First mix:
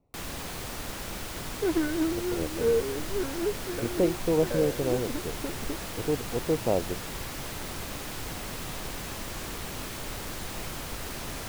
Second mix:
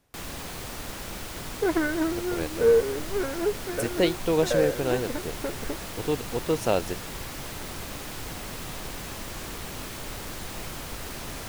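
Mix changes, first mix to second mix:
speech: remove running mean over 27 samples; second sound: add band shelf 1100 Hz +8.5 dB 2.7 oct

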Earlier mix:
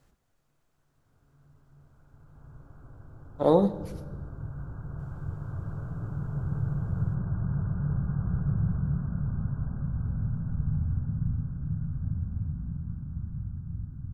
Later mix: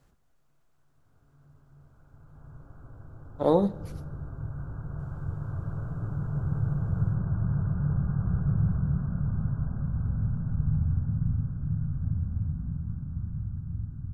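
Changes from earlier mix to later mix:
speech: send -7.5 dB; background: send +9.5 dB

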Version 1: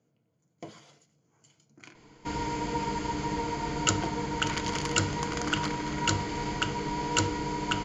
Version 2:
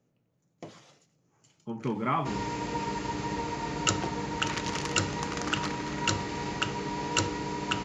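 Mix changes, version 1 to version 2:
speech: unmuted; second sound: add HPF 65 Hz; master: remove ripple EQ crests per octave 1.8, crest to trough 6 dB

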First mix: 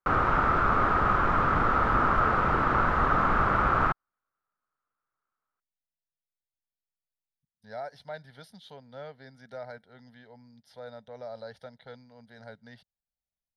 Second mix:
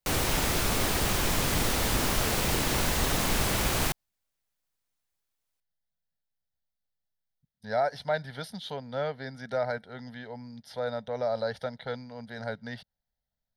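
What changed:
speech +11.0 dB; background: remove synth low-pass 1300 Hz, resonance Q 7

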